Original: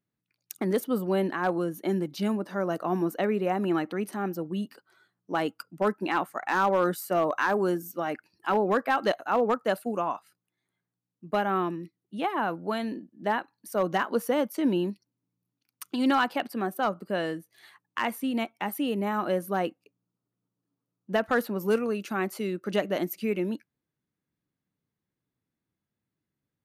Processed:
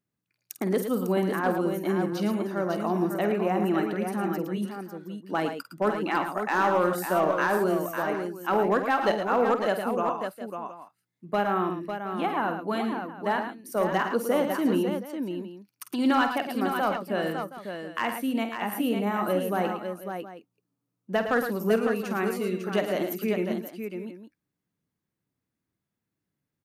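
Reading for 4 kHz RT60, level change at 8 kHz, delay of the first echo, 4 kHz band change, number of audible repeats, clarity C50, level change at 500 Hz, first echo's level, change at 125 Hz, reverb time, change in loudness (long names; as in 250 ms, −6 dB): no reverb audible, +1.5 dB, 49 ms, +0.5 dB, 4, no reverb audible, +1.5 dB, −10.5 dB, +2.0 dB, no reverb audible, +1.0 dB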